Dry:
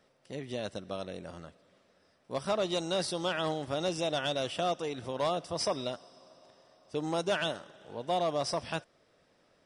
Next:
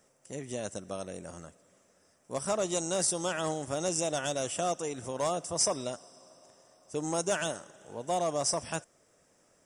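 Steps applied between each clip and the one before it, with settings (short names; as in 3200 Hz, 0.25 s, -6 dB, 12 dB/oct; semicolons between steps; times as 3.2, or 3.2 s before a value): resonant high shelf 5400 Hz +9.5 dB, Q 3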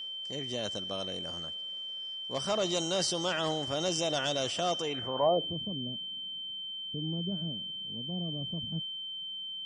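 low-pass sweep 4400 Hz -> 200 Hz, 4.81–5.6; whine 3100 Hz -37 dBFS; transient shaper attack -2 dB, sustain +3 dB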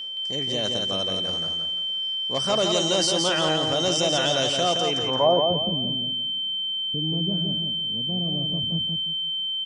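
feedback echo 0.17 s, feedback 32%, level -4.5 dB; gain +6.5 dB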